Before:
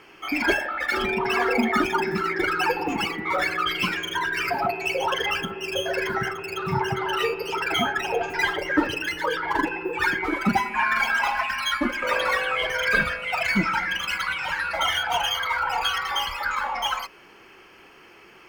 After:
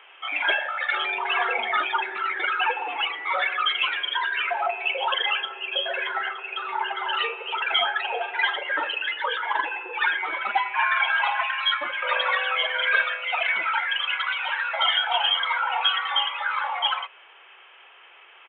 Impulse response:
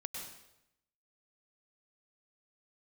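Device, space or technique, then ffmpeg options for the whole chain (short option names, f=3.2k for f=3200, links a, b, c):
musical greeting card: -af "aresample=8000,aresample=44100,highpass=f=580:w=0.5412,highpass=f=580:w=1.3066,equalizer=f=3.3k:t=o:w=0.46:g=5"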